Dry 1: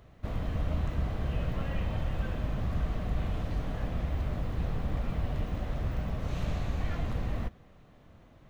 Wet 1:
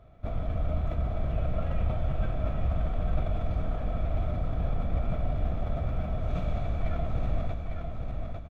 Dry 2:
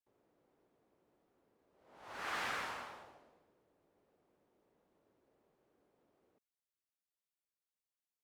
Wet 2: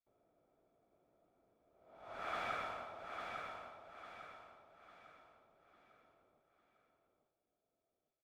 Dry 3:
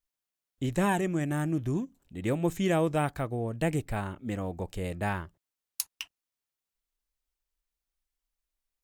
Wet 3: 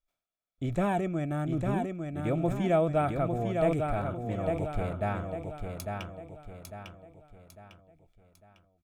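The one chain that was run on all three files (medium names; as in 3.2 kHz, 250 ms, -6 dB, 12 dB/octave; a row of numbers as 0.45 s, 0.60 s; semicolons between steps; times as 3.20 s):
tilt EQ -2 dB/octave; small resonant body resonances 670/1300/2300/3400 Hz, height 13 dB, ringing for 25 ms; on a send: feedback delay 851 ms, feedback 40%, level -5 dB; on the sum: decay stretcher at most 89 dB/s; trim -7 dB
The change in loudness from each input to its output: +2.0 LU, -4.0 LU, +0.5 LU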